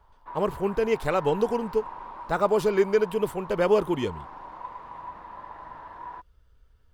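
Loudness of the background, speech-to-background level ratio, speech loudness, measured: -41.0 LUFS, 15.5 dB, -25.5 LUFS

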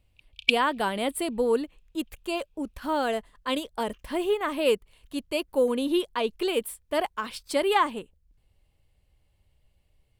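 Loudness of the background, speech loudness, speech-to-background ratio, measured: -26.0 LUFS, -28.0 LUFS, -2.0 dB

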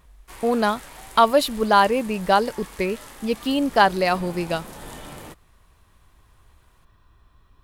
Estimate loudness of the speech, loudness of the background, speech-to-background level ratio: -21.5 LUFS, -41.0 LUFS, 19.5 dB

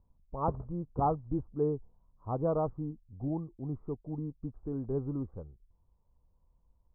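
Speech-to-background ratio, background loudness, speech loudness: 9.5 dB, -45.0 LUFS, -35.5 LUFS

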